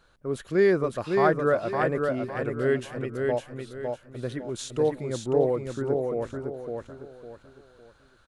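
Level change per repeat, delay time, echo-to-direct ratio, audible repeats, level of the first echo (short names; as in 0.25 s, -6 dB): -9.5 dB, 0.556 s, -3.5 dB, 4, -4.0 dB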